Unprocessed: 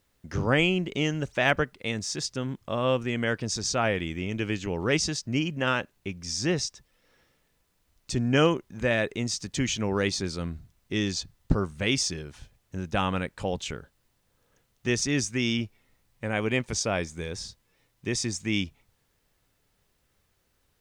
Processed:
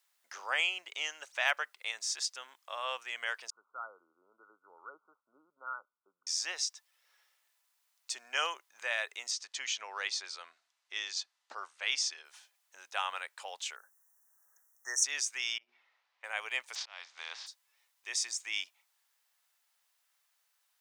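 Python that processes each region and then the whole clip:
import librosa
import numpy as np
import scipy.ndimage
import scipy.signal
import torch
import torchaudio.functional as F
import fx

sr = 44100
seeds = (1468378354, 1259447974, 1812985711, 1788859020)

y = fx.chain(x, sr, fx.brickwall_lowpass(high_hz=1500.0),
    fx.peak_eq(hz=720.0, db=-15.0, octaves=1.2), at=(3.5, 6.27))
y = fx.chain(y, sr, fx.lowpass(hz=6000.0, slope=12),
    fx.peak_eq(hz=100.0, db=-13.0, octaves=0.74), at=(9.31, 12.25))
y = fx.chain(y, sr, fx.brickwall_bandstop(low_hz=2000.0, high_hz=5400.0),
    fx.high_shelf(hz=7700.0, db=10.5), at=(13.76, 15.04))
y = fx.chain(y, sr, fx.hum_notches(base_hz=60, count=7),
    fx.over_compress(threshold_db=-43.0, ratio=-1.0),
    fx.air_absorb(metres=250.0), at=(15.58, 16.24))
y = fx.spec_flatten(y, sr, power=0.5, at=(16.74, 17.46), fade=0.02)
y = fx.lowpass(y, sr, hz=4600.0, slope=24, at=(16.74, 17.46), fade=0.02)
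y = fx.auto_swell(y, sr, attack_ms=490.0, at=(16.74, 17.46), fade=0.02)
y = scipy.signal.sosfilt(scipy.signal.butter(4, 780.0, 'highpass', fs=sr, output='sos'), y)
y = fx.high_shelf(y, sr, hz=4100.0, db=5.5)
y = y * 10.0 ** (-5.5 / 20.0)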